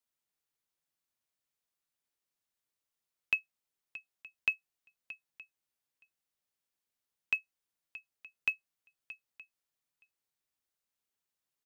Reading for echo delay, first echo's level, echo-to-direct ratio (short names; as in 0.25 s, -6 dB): 0.625 s, -16.5 dB, -16.5 dB